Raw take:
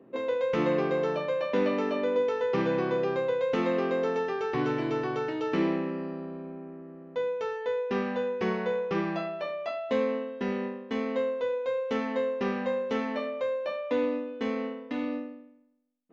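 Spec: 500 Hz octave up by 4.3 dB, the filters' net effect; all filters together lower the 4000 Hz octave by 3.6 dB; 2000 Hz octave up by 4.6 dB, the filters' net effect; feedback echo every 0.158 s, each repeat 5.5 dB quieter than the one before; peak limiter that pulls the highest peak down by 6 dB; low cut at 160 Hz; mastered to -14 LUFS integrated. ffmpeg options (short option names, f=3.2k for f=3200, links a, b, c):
-af "highpass=160,equalizer=f=500:t=o:g=4.5,equalizer=f=2k:t=o:g=7.5,equalizer=f=4k:t=o:g=-9,alimiter=limit=-18.5dB:level=0:latency=1,aecho=1:1:158|316|474|632|790|948|1106:0.531|0.281|0.149|0.079|0.0419|0.0222|0.0118,volume=12.5dB"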